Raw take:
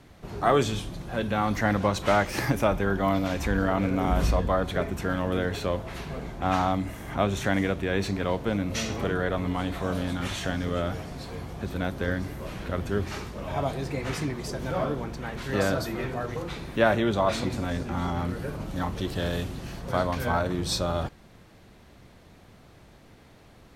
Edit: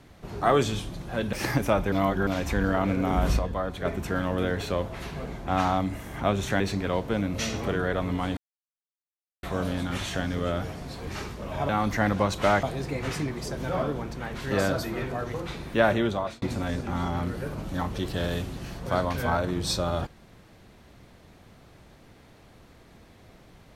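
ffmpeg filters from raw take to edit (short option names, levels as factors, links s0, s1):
-filter_complex "[0:a]asplit=12[s0][s1][s2][s3][s4][s5][s6][s7][s8][s9][s10][s11];[s0]atrim=end=1.332[s12];[s1]atrim=start=2.268:end=2.862[s13];[s2]atrim=start=2.858:end=3.212,asetpts=PTS-STARTPTS,areverse[s14];[s3]atrim=start=3.208:end=4.332[s15];[s4]atrim=start=4.328:end=4.792,asetpts=PTS-STARTPTS,volume=0.562[s16];[s5]atrim=start=4.788:end=7.542[s17];[s6]atrim=start=7.958:end=9.73,asetpts=PTS-STARTPTS,afade=t=out:st=1.768:d=0.004:c=hsin,apad=pad_dur=1.06[s18];[s7]atrim=start=9.73:end=11.372,asetpts=PTS-STARTPTS,afade=t=in:d=0.004:c=hsin[s19];[s8]atrim=start=13.028:end=13.652[s20];[s9]atrim=start=1.328:end=2.272[s21];[s10]atrim=start=13.648:end=17.44,asetpts=PTS-STARTPTS,afade=t=out:st=3.392:d=0.4[s22];[s11]atrim=start=17.44,asetpts=PTS-STARTPTS,afade=t=in:d=0.004:c=hsin[s23];[s12][s13]acrossfade=d=0.004:c1=hsin:c2=hsin[s24];[s24][s14]acrossfade=d=0.004:c1=hsin:c2=hsin[s25];[s25][s15]acrossfade=d=0.004:c1=hsin:c2=hsin[s26];[s26][s16]acrossfade=d=0.004:c1=hsin:c2=hsin[s27];[s27][s17]acrossfade=d=0.004:c1=hsin:c2=hsin[s28];[s18][s19]concat=n=2:v=0:a=1[s29];[s28][s29]acrossfade=d=0.004:c1=hsin:c2=hsin[s30];[s30][s20]acrossfade=d=0.004:c1=hsin:c2=hsin[s31];[s31][s21]acrossfade=d=0.004:c1=hsin:c2=hsin[s32];[s22][s23]concat=n=2:v=0:a=1[s33];[s32][s33]acrossfade=d=0.004:c1=hsin:c2=hsin"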